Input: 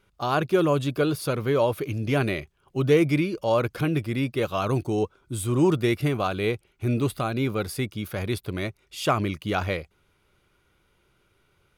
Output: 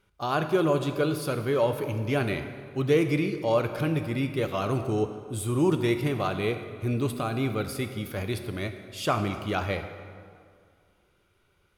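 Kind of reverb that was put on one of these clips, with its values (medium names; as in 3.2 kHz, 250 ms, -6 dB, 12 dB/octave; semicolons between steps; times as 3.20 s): plate-style reverb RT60 2.1 s, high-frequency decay 0.65×, DRR 7 dB; trim -3 dB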